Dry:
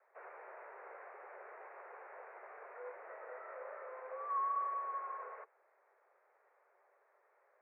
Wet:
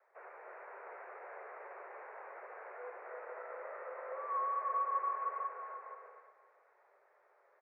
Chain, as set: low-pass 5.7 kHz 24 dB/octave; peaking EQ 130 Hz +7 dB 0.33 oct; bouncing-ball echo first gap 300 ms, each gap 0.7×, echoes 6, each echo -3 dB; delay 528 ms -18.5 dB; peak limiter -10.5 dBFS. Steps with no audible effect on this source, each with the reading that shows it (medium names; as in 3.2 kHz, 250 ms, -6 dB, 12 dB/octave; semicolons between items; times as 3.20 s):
low-pass 5.7 kHz: input has nothing above 2 kHz; peaking EQ 130 Hz: input has nothing below 360 Hz; peak limiter -10.5 dBFS: peak at its input -25.5 dBFS